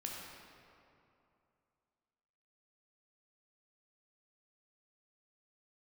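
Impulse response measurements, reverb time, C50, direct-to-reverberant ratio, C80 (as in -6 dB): 2.7 s, -0.5 dB, -2.0 dB, 1.0 dB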